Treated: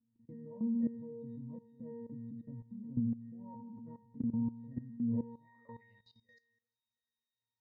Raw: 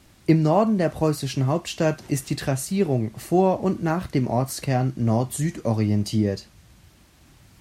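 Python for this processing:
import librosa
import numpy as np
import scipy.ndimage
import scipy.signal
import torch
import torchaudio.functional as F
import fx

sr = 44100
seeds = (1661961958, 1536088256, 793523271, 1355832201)

y = fx.peak_eq(x, sr, hz=330.0, db=-9.0, octaves=0.4)
y = fx.octave_resonator(y, sr, note='A#', decay_s=0.71)
y = fx.echo_feedback(y, sr, ms=344, feedback_pct=31, wet_db=-23.5)
y = fx.filter_sweep_bandpass(y, sr, from_hz=220.0, to_hz=6000.0, start_s=4.98, end_s=6.23, q=4.7)
y = fx.level_steps(y, sr, step_db=16)
y = fx.tilt_shelf(y, sr, db=3.5, hz=970.0, at=(0.83, 3.0))
y = F.gain(torch.from_numpy(y), 16.0).numpy()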